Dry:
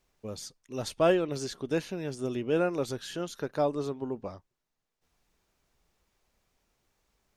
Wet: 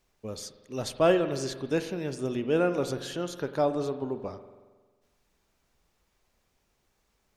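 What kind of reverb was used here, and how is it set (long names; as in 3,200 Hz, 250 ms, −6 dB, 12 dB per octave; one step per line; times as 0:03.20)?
spring reverb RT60 1.4 s, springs 45 ms, chirp 45 ms, DRR 10 dB
level +1.5 dB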